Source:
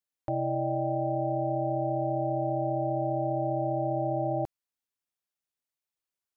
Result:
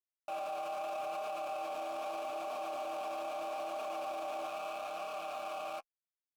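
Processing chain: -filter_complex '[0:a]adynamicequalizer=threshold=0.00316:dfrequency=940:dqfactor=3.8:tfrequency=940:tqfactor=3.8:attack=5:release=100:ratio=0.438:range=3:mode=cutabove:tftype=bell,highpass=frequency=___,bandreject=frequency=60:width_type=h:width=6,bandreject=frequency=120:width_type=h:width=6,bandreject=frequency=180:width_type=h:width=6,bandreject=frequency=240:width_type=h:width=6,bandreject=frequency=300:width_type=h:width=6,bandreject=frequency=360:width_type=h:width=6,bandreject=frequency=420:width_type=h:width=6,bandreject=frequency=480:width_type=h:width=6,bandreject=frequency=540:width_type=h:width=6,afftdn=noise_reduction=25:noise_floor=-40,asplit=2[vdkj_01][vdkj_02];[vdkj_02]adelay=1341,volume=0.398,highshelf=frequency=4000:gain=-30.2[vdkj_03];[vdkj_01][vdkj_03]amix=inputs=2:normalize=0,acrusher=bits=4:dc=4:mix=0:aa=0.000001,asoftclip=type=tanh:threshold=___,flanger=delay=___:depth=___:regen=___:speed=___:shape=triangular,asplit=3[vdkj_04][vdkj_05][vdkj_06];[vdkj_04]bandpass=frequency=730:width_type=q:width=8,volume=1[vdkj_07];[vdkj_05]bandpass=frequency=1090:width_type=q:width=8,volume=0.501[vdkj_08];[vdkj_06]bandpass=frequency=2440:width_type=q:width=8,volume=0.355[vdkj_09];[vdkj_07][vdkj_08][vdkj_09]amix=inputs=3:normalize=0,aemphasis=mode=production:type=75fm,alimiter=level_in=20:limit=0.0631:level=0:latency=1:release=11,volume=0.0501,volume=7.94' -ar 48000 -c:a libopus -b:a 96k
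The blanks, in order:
400, 0.0251, 4.2, 8.5, -12, 0.78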